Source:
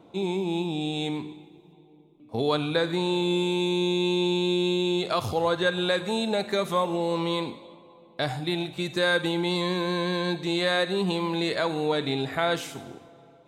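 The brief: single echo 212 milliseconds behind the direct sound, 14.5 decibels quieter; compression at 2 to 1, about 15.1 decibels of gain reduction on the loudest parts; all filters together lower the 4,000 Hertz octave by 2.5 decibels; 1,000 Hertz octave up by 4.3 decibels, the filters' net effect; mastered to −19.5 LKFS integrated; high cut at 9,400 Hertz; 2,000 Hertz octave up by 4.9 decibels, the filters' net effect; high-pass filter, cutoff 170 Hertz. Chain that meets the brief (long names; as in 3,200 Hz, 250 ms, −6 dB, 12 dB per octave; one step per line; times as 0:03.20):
high-pass filter 170 Hz
low-pass filter 9,400 Hz
parametric band 1,000 Hz +4 dB
parametric band 2,000 Hz +6 dB
parametric band 4,000 Hz −4.5 dB
downward compressor 2 to 1, threshold −46 dBFS
single-tap delay 212 ms −14.5 dB
level +19 dB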